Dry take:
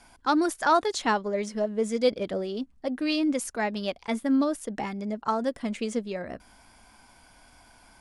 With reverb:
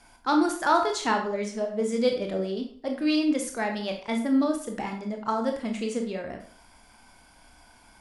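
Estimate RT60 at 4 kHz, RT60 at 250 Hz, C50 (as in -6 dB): 0.40 s, 0.45 s, 7.5 dB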